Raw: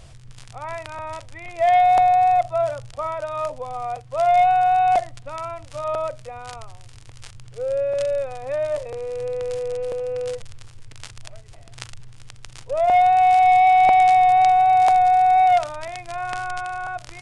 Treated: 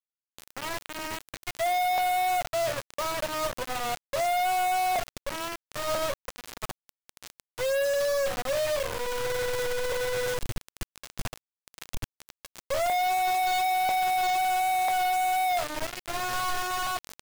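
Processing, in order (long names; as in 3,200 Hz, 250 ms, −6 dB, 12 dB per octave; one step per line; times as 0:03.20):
tuned comb filter 550 Hz, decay 0.26 s, harmonics all, mix 80%
log-companded quantiser 2 bits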